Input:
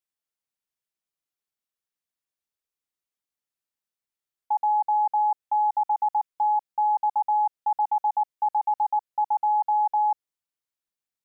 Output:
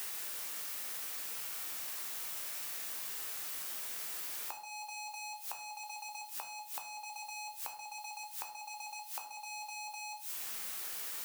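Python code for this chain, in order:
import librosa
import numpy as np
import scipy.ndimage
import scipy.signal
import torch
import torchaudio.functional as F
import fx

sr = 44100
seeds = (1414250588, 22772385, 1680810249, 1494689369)

p1 = scipy.signal.sosfilt(scipy.signal.butter(4, 620.0, 'highpass', fs=sr, output='sos'), x)
p2 = fx.leveller(p1, sr, passes=5)
p3 = fx.level_steps(p2, sr, step_db=22)
p4 = p2 + (p3 * librosa.db_to_amplitude(-1.5))
p5 = fx.dmg_noise_colour(p4, sr, seeds[0], colour='blue', level_db=-38.0)
p6 = fx.gate_flip(p5, sr, shuts_db=-24.0, range_db=-24)
p7 = fx.room_shoebox(p6, sr, seeds[1], volume_m3=58.0, walls='mixed', distance_m=0.5)
p8 = fx.band_squash(p7, sr, depth_pct=70)
y = p8 * librosa.db_to_amplitude(-5.0)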